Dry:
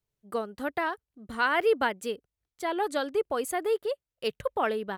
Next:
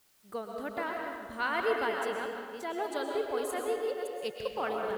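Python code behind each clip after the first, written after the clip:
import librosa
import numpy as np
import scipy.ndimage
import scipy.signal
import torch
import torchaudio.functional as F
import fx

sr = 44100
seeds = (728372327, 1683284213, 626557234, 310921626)

y = fx.reverse_delay(x, sr, ms=291, wet_db=-7)
y = fx.quant_dither(y, sr, seeds[0], bits=10, dither='triangular')
y = fx.rev_freeverb(y, sr, rt60_s=1.6, hf_ratio=0.75, predelay_ms=85, drr_db=1.5)
y = F.gain(torch.from_numpy(y), -7.0).numpy()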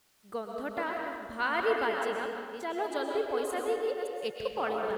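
y = fx.high_shelf(x, sr, hz=9200.0, db=-6.5)
y = F.gain(torch.from_numpy(y), 1.5).numpy()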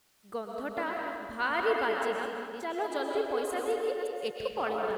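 y = x + 10.0 ** (-10.0 / 20.0) * np.pad(x, (int(208 * sr / 1000.0), 0))[:len(x)]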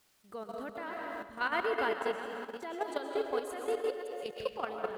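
y = fx.level_steps(x, sr, step_db=10)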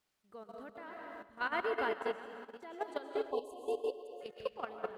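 y = fx.spec_erase(x, sr, start_s=3.31, length_s=0.9, low_hz=1100.0, high_hz=2600.0)
y = fx.high_shelf(y, sr, hz=5400.0, db=-6.5)
y = fx.upward_expand(y, sr, threshold_db=-46.0, expansion=1.5)
y = F.gain(torch.from_numpy(y), -2.0).numpy()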